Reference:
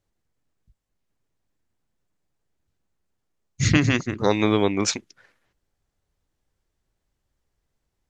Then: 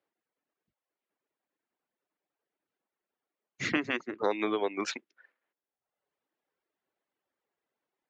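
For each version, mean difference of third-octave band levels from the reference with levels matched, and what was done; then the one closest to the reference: 5.5 dB: three-band isolator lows -18 dB, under 270 Hz, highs -18 dB, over 3300 Hz; reverb removal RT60 0.99 s; compressor 2:1, threshold -29 dBFS, peak gain reduction 8 dB; HPF 170 Hz 12 dB/oct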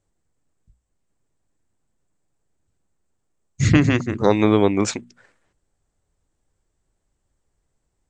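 2.0 dB: dynamic EQ 6300 Hz, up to -7 dB, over -42 dBFS, Q 1.3; synth low-pass 8000 Hz, resonance Q 5.7; high shelf 2100 Hz -9.5 dB; notches 60/120/180/240 Hz; gain +4.5 dB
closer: second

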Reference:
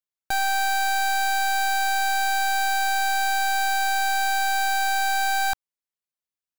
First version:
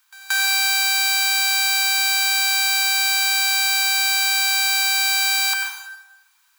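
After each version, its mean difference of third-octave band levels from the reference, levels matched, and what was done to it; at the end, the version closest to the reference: 6.5 dB: per-bin compression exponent 0.6; steep high-pass 900 Hz 96 dB/oct; on a send: reverse echo 0.178 s -22 dB; on the sum: plate-style reverb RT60 1 s, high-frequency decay 0.8×, pre-delay 80 ms, DRR 2 dB; gain +7 dB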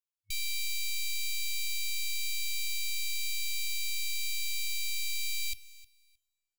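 11.5 dB: FFT band-reject 100–2200 Hz; feedback echo 0.311 s, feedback 18%, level -19.5 dB; two-slope reverb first 0.5 s, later 2.2 s, from -19 dB, DRR 19 dB; gain -5 dB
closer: first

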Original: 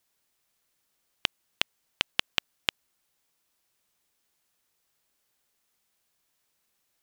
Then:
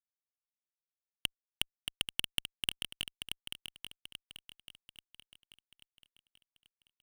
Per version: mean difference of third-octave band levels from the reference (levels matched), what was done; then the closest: 6.5 dB: high shelf 2600 Hz +3 dB; fuzz box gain 35 dB, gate -44 dBFS; on a send: swung echo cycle 0.836 s, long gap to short 3:1, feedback 43%, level -6 dB; on the sum: gain -4.5 dB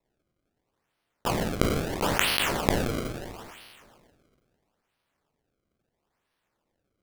12.0 dB: spectral trails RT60 2.17 s; high shelf 4500 Hz -11.5 dB; decimation with a swept rate 28×, swing 160% 0.75 Hz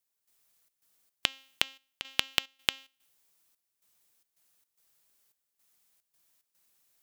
3.0 dB: high shelf 6100 Hz +8 dB; de-hum 267.7 Hz, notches 29; step gate "..xxx.xx.xxxx" 110 bpm -12 dB; gain -1 dB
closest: third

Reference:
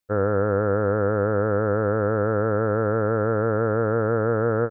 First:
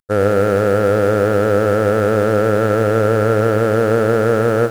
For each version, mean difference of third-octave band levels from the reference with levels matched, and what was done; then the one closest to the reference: 8.0 dB: CVSD 64 kbps; bell 76 Hz -4 dB 1.1 oct; lo-fi delay 0.101 s, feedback 55%, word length 7-bit, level -11 dB; gain +8 dB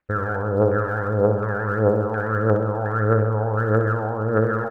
3.5 dB: limiter -21 dBFS, peak gain reduction 10 dB; LFO low-pass square 1.4 Hz 880–1800 Hz; phaser 1.6 Hz, delay 1.4 ms, feedback 66%; feedback echo 64 ms, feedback 58%, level -7.5 dB; gain +4 dB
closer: second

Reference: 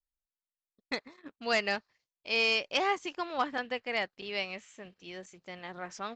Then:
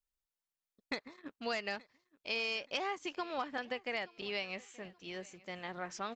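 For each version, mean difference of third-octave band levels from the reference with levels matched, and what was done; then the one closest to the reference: 4.0 dB: compressor 6:1, threshold -34 dBFS, peak gain reduction 10.5 dB; feedback echo 0.876 s, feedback 35%, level -23 dB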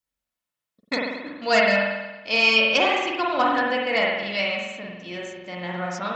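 5.5 dB: HPF 66 Hz; notch comb 400 Hz; spring tank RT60 1.1 s, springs 45 ms, chirp 70 ms, DRR -2.5 dB; gain +8.5 dB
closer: first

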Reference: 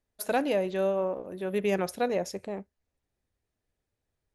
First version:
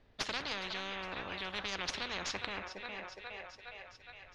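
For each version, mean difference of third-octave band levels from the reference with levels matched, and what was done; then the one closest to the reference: 12.5 dB: tracing distortion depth 0.054 ms; LPF 4200 Hz 24 dB/oct; thinning echo 0.413 s, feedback 73%, high-pass 800 Hz, level -19 dB; spectral compressor 10:1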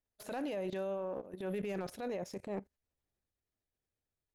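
3.5 dB: level quantiser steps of 19 dB; transient shaper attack -8 dB, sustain +3 dB; limiter -33.5 dBFS, peak gain reduction 6.5 dB; slew limiter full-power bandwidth 17 Hz; gain +3 dB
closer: second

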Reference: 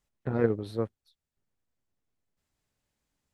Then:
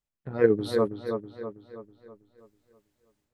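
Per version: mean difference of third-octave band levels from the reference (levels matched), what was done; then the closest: 5.0 dB: spectral noise reduction 10 dB; AGC gain up to 13 dB; on a send: dark delay 0.324 s, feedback 48%, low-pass 2300 Hz, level -6 dB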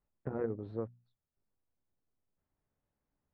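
3.5 dB: LPF 1300 Hz 12 dB/oct; notches 60/120/180/240 Hz; compressor 2.5:1, threshold -33 dBFS, peak gain reduction 9 dB; gain -2 dB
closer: second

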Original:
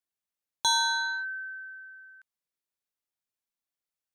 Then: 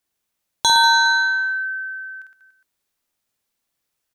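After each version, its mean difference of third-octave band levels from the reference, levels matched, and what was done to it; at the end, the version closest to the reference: 3.0 dB: low shelf 340 Hz +3 dB; in parallel at -2 dB: compressor, threshold -36 dBFS, peak gain reduction 13 dB; on the sum: reverse bouncing-ball echo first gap 50 ms, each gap 1.25×, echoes 5; gain +6.5 dB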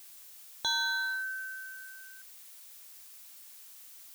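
10.5 dB: LPF 3900 Hz; notch 960 Hz, Q 5.1; added noise blue -50 dBFS; gain -1.5 dB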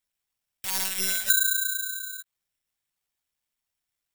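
15.5 dB: wrapped overs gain 32 dB; monotone LPC vocoder at 8 kHz 190 Hz; careless resampling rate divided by 8×, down none, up zero stuff; gain +5.5 dB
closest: first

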